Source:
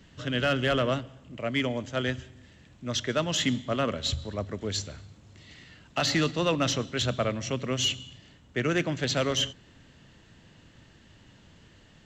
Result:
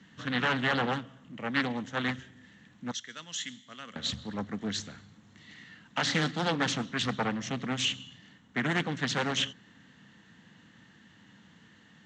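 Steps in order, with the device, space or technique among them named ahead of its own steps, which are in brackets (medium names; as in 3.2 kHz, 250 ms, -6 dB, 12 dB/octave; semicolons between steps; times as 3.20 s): 2.91–3.96 s: pre-emphasis filter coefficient 0.9; full-range speaker at full volume (loudspeaker Doppler distortion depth 0.83 ms; cabinet simulation 170–7000 Hz, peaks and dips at 200 Hz +6 dB, 380 Hz -8 dB, 600 Hz -10 dB, 1.8 kHz +5 dB, 2.5 kHz -5 dB, 4.9 kHz -7 dB)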